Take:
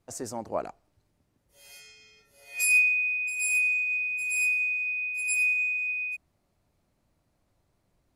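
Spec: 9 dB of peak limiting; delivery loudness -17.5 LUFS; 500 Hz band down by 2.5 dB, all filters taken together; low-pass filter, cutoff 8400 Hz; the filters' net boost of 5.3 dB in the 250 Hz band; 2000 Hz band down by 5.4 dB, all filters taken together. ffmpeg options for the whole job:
-af "lowpass=8.4k,equalizer=f=250:t=o:g=7.5,equalizer=f=500:t=o:g=-4.5,equalizer=f=2k:t=o:g=-7.5,volume=13.5dB,alimiter=limit=-13dB:level=0:latency=1"

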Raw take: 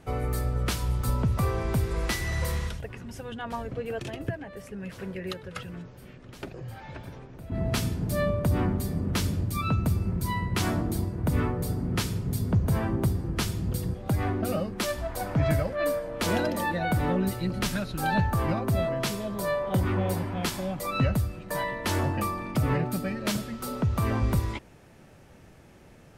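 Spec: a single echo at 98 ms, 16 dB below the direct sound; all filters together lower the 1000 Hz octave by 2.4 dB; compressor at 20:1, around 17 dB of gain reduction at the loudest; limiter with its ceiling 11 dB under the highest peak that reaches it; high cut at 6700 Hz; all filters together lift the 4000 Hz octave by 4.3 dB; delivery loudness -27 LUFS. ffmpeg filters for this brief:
-af "lowpass=6.7k,equalizer=f=1k:t=o:g=-3.5,equalizer=f=4k:t=o:g=6,acompressor=threshold=-37dB:ratio=20,alimiter=level_in=10.5dB:limit=-24dB:level=0:latency=1,volume=-10.5dB,aecho=1:1:98:0.158,volume=16.5dB"

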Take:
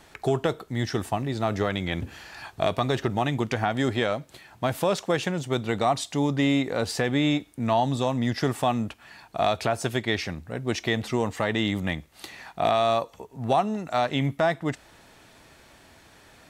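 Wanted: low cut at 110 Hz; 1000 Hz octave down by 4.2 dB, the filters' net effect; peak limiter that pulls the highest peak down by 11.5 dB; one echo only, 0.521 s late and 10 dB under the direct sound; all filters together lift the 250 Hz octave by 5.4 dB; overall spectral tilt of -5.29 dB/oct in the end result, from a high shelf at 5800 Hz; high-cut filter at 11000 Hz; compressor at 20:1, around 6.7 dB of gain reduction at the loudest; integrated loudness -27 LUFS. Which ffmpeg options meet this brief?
-af "highpass=110,lowpass=11k,equalizer=f=250:t=o:g=7,equalizer=f=1k:t=o:g=-7.5,highshelf=f=5.8k:g=4,acompressor=threshold=-21dB:ratio=20,alimiter=limit=-20.5dB:level=0:latency=1,aecho=1:1:521:0.316,volume=4dB"

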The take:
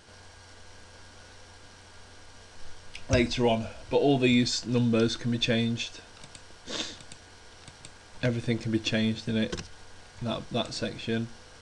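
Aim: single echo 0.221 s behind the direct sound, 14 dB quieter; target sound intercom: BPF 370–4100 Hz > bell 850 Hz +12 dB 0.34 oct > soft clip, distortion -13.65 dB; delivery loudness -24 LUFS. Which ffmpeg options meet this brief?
-af "highpass=370,lowpass=4.1k,equalizer=f=850:t=o:w=0.34:g=12,aecho=1:1:221:0.2,asoftclip=threshold=-20dB,volume=8.5dB"

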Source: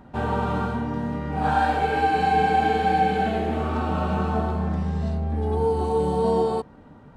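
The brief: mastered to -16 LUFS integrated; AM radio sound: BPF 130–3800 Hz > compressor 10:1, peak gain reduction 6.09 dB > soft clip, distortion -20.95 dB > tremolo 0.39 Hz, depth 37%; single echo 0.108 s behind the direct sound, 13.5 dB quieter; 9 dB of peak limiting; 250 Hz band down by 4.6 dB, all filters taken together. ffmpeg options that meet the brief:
-af "equalizer=f=250:t=o:g=-5.5,alimiter=limit=-19.5dB:level=0:latency=1,highpass=130,lowpass=3.8k,aecho=1:1:108:0.211,acompressor=threshold=-28dB:ratio=10,asoftclip=threshold=-25dB,tremolo=f=0.39:d=0.37,volume=19.5dB"

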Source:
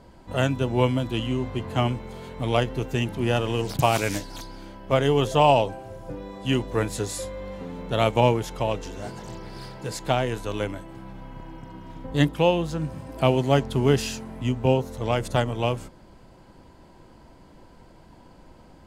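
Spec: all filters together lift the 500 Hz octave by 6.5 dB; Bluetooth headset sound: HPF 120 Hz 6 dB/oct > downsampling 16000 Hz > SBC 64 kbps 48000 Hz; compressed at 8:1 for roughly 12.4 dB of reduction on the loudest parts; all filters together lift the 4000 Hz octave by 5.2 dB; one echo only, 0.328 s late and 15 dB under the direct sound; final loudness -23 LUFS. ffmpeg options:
-af "equalizer=f=500:t=o:g=8,equalizer=f=4k:t=o:g=7.5,acompressor=threshold=-22dB:ratio=8,highpass=f=120:p=1,aecho=1:1:328:0.178,aresample=16000,aresample=44100,volume=6dB" -ar 48000 -c:a sbc -b:a 64k

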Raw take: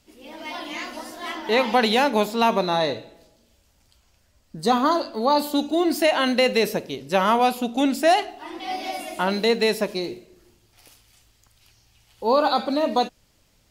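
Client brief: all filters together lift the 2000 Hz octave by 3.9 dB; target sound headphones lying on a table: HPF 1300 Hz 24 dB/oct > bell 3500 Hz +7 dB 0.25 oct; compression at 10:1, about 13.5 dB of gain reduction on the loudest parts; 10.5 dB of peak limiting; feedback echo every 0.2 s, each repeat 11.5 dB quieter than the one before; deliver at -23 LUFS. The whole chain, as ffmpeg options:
-af "equalizer=f=2k:t=o:g=5,acompressor=threshold=-27dB:ratio=10,alimiter=level_in=2.5dB:limit=-24dB:level=0:latency=1,volume=-2.5dB,highpass=f=1.3k:w=0.5412,highpass=f=1.3k:w=1.3066,equalizer=f=3.5k:t=o:w=0.25:g=7,aecho=1:1:200|400|600:0.266|0.0718|0.0194,volume=15.5dB"

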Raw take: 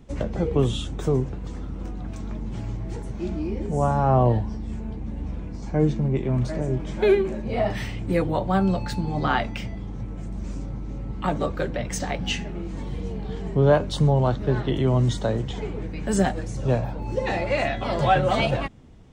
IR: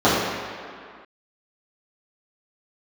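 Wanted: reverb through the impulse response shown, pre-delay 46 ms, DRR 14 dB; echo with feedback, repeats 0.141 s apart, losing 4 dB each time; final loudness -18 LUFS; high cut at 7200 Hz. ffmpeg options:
-filter_complex "[0:a]lowpass=7.2k,aecho=1:1:141|282|423|564|705|846|987|1128|1269:0.631|0.398|0.25|0.158|0.0994|0.0626|0.0394|0.0249|0.0157,asplit=2[a][b];[1:a]atrim=start_sample=2205,adelay=46[c];[b][c]afir=irnorm=-1:irlink=0,volume=-39dB[d];[a][d]amix=inputs=2:normalize=0,volume=5dB"

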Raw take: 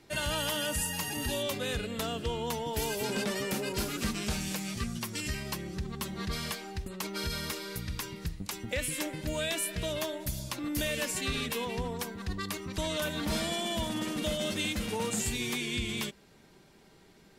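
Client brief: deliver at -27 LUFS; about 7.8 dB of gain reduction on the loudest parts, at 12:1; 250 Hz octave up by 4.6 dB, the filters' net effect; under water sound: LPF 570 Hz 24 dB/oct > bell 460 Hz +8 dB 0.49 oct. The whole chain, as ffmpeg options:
-af "equalizer=f=250:t=o:g=5,acompressor=threshold=-33dB:ratio=12,lowpass=f=570:w=0.5412,lowpass=f=570:w=1.3066,equalizer=f=460:t=o:w=0.49:g=8,volume=11dB"

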